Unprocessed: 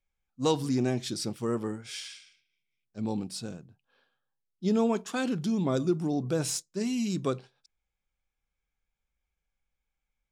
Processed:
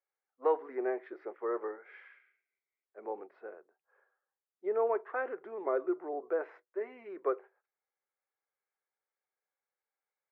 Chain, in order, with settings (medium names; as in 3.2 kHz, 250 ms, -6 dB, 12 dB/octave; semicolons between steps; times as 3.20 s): Chebyshev band-pass 380–2000 Hz, order 4